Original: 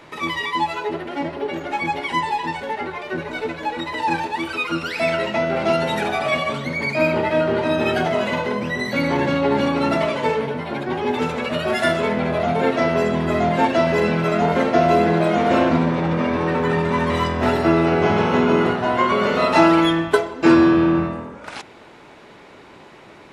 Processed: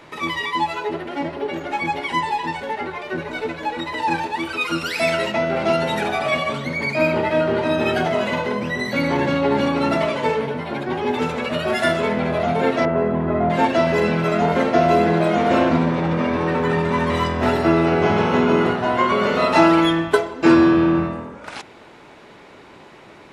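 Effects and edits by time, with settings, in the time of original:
0:04.61–0:05.32: high-shelf EQ 5,000 Hz +10 dB
0:12.85–0:13.50: low-pass filter 1,400 Hz

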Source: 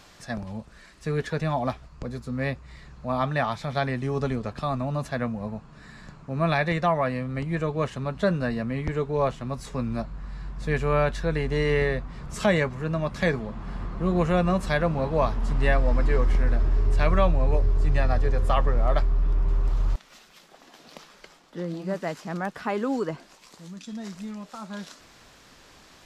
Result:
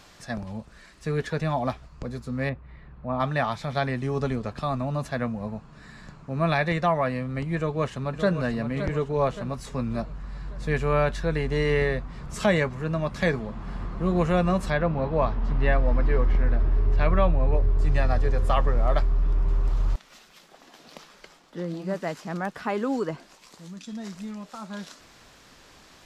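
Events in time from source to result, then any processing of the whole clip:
0:02.49–0:03.20: high-frequency loss of the air 490 metres
0:07.56–0:08.40: delay throw 570 ms, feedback 50%, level −9 dB
0:14.70–0:17.79: high-frequency loss of the air 180 metres

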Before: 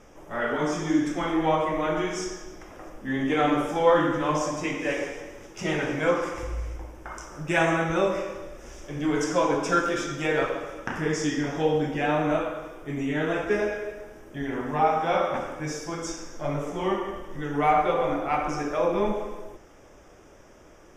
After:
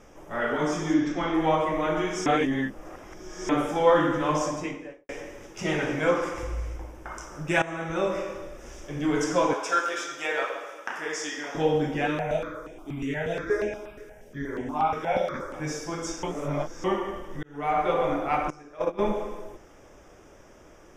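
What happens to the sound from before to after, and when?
0:00.94–0:01.34: low-pass filter 5,900 Hz 24 dB per octave
0:02.26–0:03.49: reverse
0:04.44–0:05.09: fade out and dull
0:07.62–0:08.48: fade in equal-power, from −17.5 dB
0:09.53–0:11.55: high-pass filter 610 Hz
0:12.07–0:15.54: step-sequenced phaser 8.4 Hz 200–4,400 Hz
0:16.23–0:16.84: reverse
0:17.43–0:17.93: fade in
0:18.50–0:18.99: noise gate −23 dBFS, range −18 dB

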